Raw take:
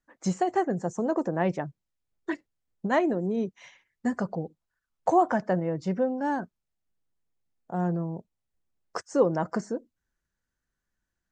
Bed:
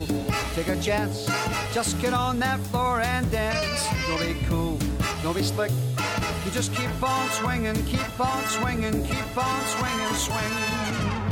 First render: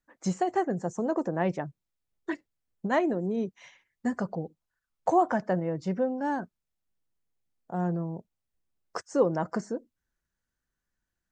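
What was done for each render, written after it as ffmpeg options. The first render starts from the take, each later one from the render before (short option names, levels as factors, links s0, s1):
-af "volume=0.841"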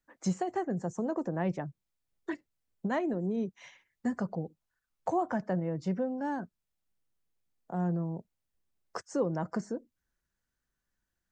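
-filter_complex "[0:a]acrossover=split=230[s0][s1];[s1]acompressor=threshold=0.00891:ratio=1.5[s2];[s0][s2]amix=inputs=2:normalize=0"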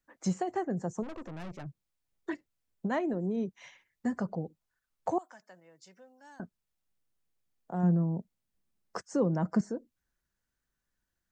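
-filter_complex "[0:a]asplit=3[s0][s1][s2];[s0]afade=t=out:st=1.02:d=0.02[s3];[s1]aeval=exprs='(tanh(100*val(0)+0.7)-tanh(0.7))/100':c=same,afade=t=in:st=1.02:d=0.02,afade=t=out:st=1.65:d=0.02[s4];[s2]afade=t=in:st=1.65:d=0.02[s5];[s3][s4][s5]amix=inputs=3:normalize=0,asettb=1/sr,asplit=3[s6][s7][s8];[s6]atrim=end=5.184[s9];[s7]atrim=start=5.18:end=6.4,asetpts=PTS-STARTPTS,afade=t=in:d=0.004:c=qsin,afade=t=out:st=1.216:d=0.004:c=qsin,aderivative[s10];[s8]atrim=start=6.396[s11];[s9][s10]acrossfade=d=0.004:c1=hsin:c2=qsin[s12];[s12][s11]acrossfade=d=0.004:c1=qsin:c2=hsin,asettb=1/sr,asplit=3[s13][s14][s15];[s13]atrim=end=7.834[s16];[s14]atrim=start=7.83:end=9.61,asetpts=PTS-STARTPTS,afade=t=in:d=0.004:c=qsin,afade=t=out:st=1.776:d=0.004:c=qsin,equalizer=f=200:t=o:w=0.77:g=8[s17];[s15]atrim=start=9.606[s18];[s16][s17]acrossfade=d=0.004:c1=hsin:c2=qsin[s19];[s19][s18]acrossfade=d=0.004:c1=qsin:c2=hsin"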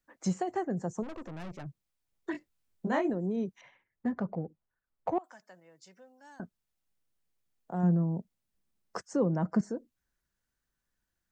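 -filter_complex "[0:a]asettb=1/sr,asplit=3[s0][s1][s2];[s0]atrim=end=2.324[s3];[s1]atrim=start=2.32:end=3.1,asetpts=PTS-STARTPTS,afade=t=in:d=0.004:c=qsin,afade=t=out:st=0.776:d=0.004:c=qsin,asplit=2[s4][s5];[s5]adelay=23,volume=0.75[s6];[s4][s6]amix=inputs=2:normalize=0,atrim=end_sample=34398[s7];[s2]atrim=start=3.096[s8];[s3][s7]acrossfade=d=0.004:c1=hsin:c2=qsin[s9];[s9][s8]acrossfade=d=0.004:c1=qsin:c2=hsin,asettb=1/sr,asplit=3[s10][s11][s12];[s10]atrim=end=3.614[s13];[s11]atrim=start=3.61:end=5.24,asetpts=PTS-STARTPTS,afade=t=in:d=0.004:c=qsin,afade=t=out:st=1.626:d=0.004:c=qsin,adynamicsmooth=sensitivity=2:basefreq=1900[s14];[s12]atrim=start=5.236[s15];[s13][s14]acrossfade=d=0.004:c1=hsin:c2=qsin[s16];[s16][s15]acrossfade=d=0.004:c1=qsin:c2=hsin,asettb=1/sr,asplit=3[s17][s18][s19];[s17]atrim=end=9.134[s20];[s18]atrim=start=9.13:end=9.63,asetpts=PTS-STARTPTS,afade=t=in:d=0.004:c=qsin,afade=t=out:st=0.496:d=0.004:c=qsin,lowpass=f=3800:p=1[s21];[s19]atrim=start=9.626[s22];[s20][s21]acrossfade=d=0.004:c1=hsin:c2=qsin[s23];[s23][s22]acrossfade=d=0.004:c1=qsin:c2=hsin"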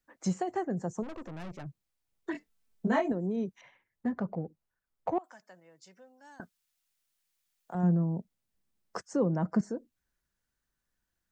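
-filter_complex "[0:a]asettb=1/sr,asplit=3[s0][s1][s2];[s0]atrim=end=2.354[s3];[s1]atrim=start=2.35:end=3.12,asetpts=PTS-STARTPTS,afade=t=in:d=0.004:c=qsin,afade=t=out:st=0.766:d=0.004:c=qsin,aecho=1:1:4.5:0.71,atrim=end_sample=33957[s4];[s2]atrim=start=3.116[s5];[s3][s4]acrossfade=d=0.004:c1=hsin:c2=qsin[s6];[s6][s5]acrossfade=d=0.004:c1=qsin:c2=hsin,asettb=1/sr,asplit=3[s7][s8][s9];[s7]atrim=end=6.404[s10];[s8]atrim=start=6.4:end=7.75,asetpts=PTS-STARTPTS,afade=t=in:d=0.004:c=qsin,afade=t=out:st=1.346:d=0.004:c=qsin,tiltshelf=f=890:g=-9[s11];[s9]atrim=start=7.746[s12];[s10][s11]acrossfade=d=0.004:c1=hsin:c2=qsin[s13];[s13][s12]acrossfade=d=0.004:c1=qsin:c2=hsin"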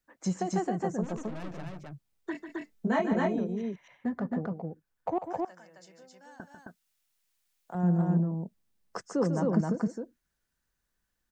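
-af "aecho=1:1:145.8|265.3:0.355|0.794"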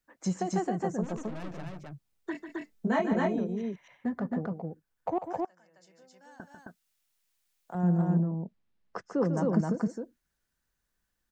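-filter_complex "[0:a]asettb=1/sr,asplit=3[s0][s1][s2];[s0]atrim=end=8.224[s3];[s1]atrim=start=8.22:end=9.37,asetpts=PTS-STARTPTS,afade=t=in:d=0.004:c=qsin,afade=t=out:st=1.146:d=0.004:c=qsin,lowpass=3400[s4];[s2]atrim=start=9.366[s5];[s3][s4]acrossfade=d=0.004:c1=hsin:c2=qsin[s6];[s6][s5]acrossfade=d=0.004:c1=qsin:c2=hsin,asplit=2[s7][s8];[s7]atrim=end=5.46,asetpts=PTS-STARTPTS,afade=t=out:st=5.456:d=0.004:c=hsin:silence=0.211349[s9];[s8]atrim=start=5.46,asetpts=PTS-STARTPTS,afade=t=in:d=1.08:silence=0.211349[s10];[s9][s10]concat=n=2:v=0:a=1"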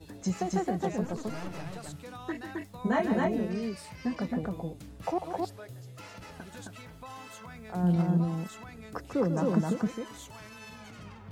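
-filter_complex "[1:a]volume=0.0944[s0];[0:a][s0]amix=inputs=2:normalize=0"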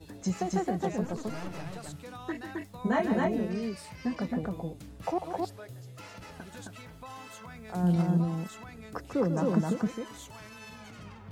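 -filter_complex "[0:a]asettb=1/sr,asplit=3[s0][s1][s2];[s0]atrim=end=7.684[s3];[s1]atrim=start=7.68:end=8.22,asetpts=PTS-STARTPTS,afade=t=in:d=0.004:c=qsin,afade=t=out:st=0.536:d=0.004:c=qsin,equalizer=f=8100:t=o:w=2.1:g=5[s4];[s2]atrim=start=8.216[s5];[s3][s4]acrossfade=d=0.004:c1=hsin:c2=qsin[s6];[s6][s5]acrossfade=d=0.004:c1=qsin:c2=hsin"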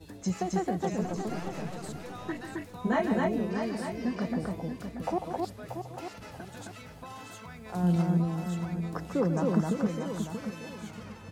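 -af "aecho=1:1:633|1266|1899|2532:0.398|0.127|0.0408|0.013"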